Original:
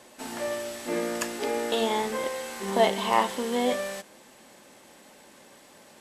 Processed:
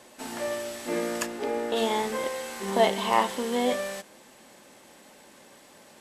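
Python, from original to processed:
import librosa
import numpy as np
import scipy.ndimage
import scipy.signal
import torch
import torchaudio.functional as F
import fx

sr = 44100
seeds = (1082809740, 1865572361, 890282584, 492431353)

y = fx.high_shelf(x, sr, hz=2500.0, db=-9.5, at=(1.25, 1.75), fade=0.02)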